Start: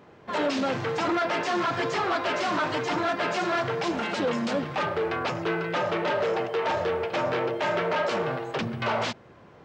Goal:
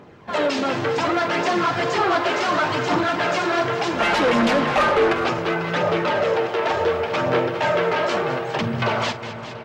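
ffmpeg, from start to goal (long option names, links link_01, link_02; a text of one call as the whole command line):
ffmpeg -i in.wav -filter_complex "[0:a]aphaser=in_gain=1:out_gain=1:delay=3.1:decay=0.35:speed=0.68:type=triangular,asplit=2[link_01][link_02];[link_02]aecho=0:1:888|1776|2664|3552|4440:0.126|0.0743|0.0438|0.0259|0.0153[link_03];[link_01][link_03]amix=inputs=2:normalize=0,asettb=1/sr,asplit=3[link_04][link_05][link_06];[link_04]atrim=end=4.004[link_07];[link_05]atrim=start=4:end=5.13,asetpts=PTS-STARTPTS,afade=type=in:duration=0.004:curve=qsin,afade=type=out:start_time=1.126:duration=0.004:curve=qsin,asplit=2[link_08][link_09];[link_09]highpass=frequency=720:poles=1,volume=19dB,asoftclip=type=tanh:threshold=-15dB[link_10];[link_08][link_10]amix=inputs=2:normalize=0,lowpass=frequency=2300:poles=1,volume=-6dB[link_11];[link_06]atrim=start=5.126[link_12];[link_07][link_11]acrossfade=duration=0.004:curve1=hsin:curve2=qsin[link_13];[link_13][link_12]acrossfade=duration=0.004:curve1=qsin:curve2=hsin,asplit=2[link_14][link_15];[link_15]aecho=0:1:47|207|410|690:0.168|0.224|0.211|0.133[link_16];[link_14][link_16]amix=inputs=2:normalize=0,volume=4.5dB" out.wav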